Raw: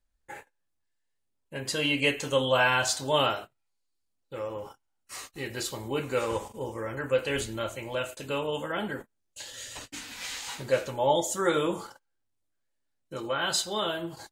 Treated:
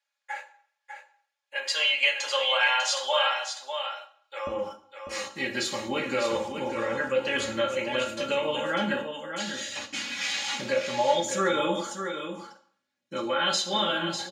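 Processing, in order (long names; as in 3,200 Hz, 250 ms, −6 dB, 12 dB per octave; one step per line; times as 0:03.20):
high-pass filter 640 Hz 24 dB per octave, from 0:04.47 120 Hz
comb filter 3.6 ms, depth 76%
downward compressor 2.5 to 1, threshold −28 dBFS, peak gain reduction 9.5 dB
high-frequency loss of the air 51 metres
single-tap delay 598 ms −7.5 dB
convolution reverb RT60 0.55 s, pre-delay 3 ms, DRR 5 dB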